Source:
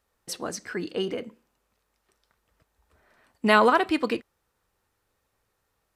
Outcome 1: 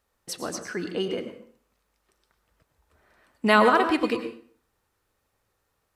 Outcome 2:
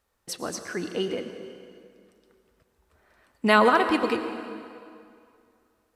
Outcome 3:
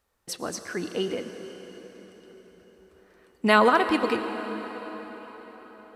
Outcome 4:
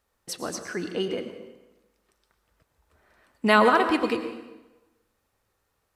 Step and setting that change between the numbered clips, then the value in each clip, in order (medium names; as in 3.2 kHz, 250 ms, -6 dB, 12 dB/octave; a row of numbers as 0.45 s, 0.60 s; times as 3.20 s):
plate-style reverb, RT60: 0.51 s, 2.4 s, 5.3 s, 1.1 s